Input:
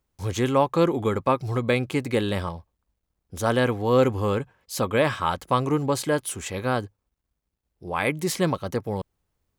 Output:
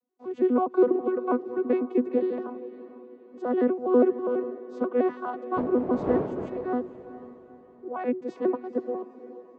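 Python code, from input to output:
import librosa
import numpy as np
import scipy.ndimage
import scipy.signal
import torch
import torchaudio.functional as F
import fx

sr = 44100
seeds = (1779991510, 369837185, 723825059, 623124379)

y = fx.vocoder_arp(x, sr, chord='bare fifth', root=59, every_ms=82)
y = fx.dmg_wind(y, sr, seeds[0], corner_hz=420.0, level_db=-29.0, at=(5.56, 6.66), fade=0.02)
y = fx.bandpass_q(y, sr, hz=470.0, q=0.76)
y = fx.echo_diffused(y, sr, ms=470, feedback_pct=43, wet_db=-14.5)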